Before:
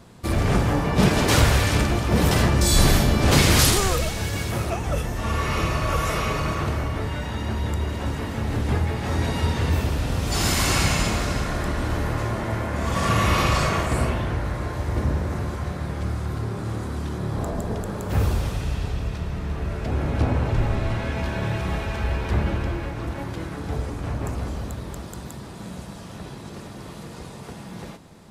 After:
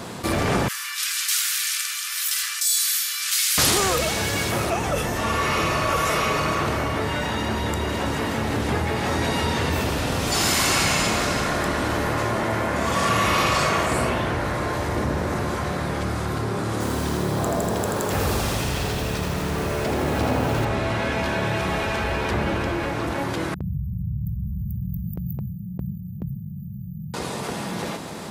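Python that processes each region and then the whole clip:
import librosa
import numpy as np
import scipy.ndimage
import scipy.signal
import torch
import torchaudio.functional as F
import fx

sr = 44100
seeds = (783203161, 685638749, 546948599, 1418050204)

y = fx.chain(x, sr, fx.steep_highpass(hz=1200.0, slope=48),
    fx.differentiator(), at=(0.68, 3.58))
y = fx.chain(y, sr, fx.bass_treble(bass_db=-1, treble_db=3),
    fx.echo_crushed(ms=82, feedback_pct=35, bits=7, wet_db=-3), at=(16.72, 20.65))
y = fx.chain(y, sr, fx.brickwall_bandstop(low_hz=200.0, high_hz=14000.0),
    fx.gate_hold(open_db=-30.0, close_db=-34.0, hold_ms=71.0, range_db=-21, attack_ms=1.4, release_ms=100.0),
    fx.env_flatten(amount_pct=50), at=(23.54, 27.14))
y = fx.highpass(y, sr, hz=270.0, slope=6)
y = fx.env_flatten(y, sr, amount_pct=50)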